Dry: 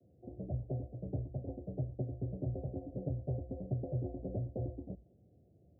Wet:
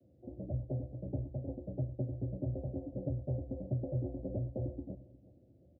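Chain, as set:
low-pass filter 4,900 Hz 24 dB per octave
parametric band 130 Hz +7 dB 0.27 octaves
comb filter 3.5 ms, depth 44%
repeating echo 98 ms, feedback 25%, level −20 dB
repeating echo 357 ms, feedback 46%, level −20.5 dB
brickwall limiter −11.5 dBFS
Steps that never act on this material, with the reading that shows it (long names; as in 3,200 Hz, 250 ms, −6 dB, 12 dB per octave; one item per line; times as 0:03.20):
low-pass filter 4,900 Hz: nothing at its input above 720 Hz
brickwall limiter −11.5 dBFS: peak of its input −23.5 dBFS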